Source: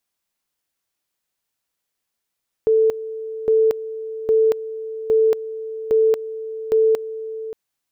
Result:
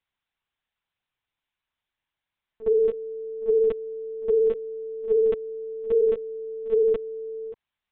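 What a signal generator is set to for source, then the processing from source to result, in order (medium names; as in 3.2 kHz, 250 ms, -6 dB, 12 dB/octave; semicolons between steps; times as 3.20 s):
two-level tone 442 Hz -12 dBFS, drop 14.5 dB, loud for 0.23 s, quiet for 0.58 s, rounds 6
high-pass 670 Hz 6 dB/octave; reverse echo 54 ms -15.5 dB; LPC vocoder at 8 kHz pitch kept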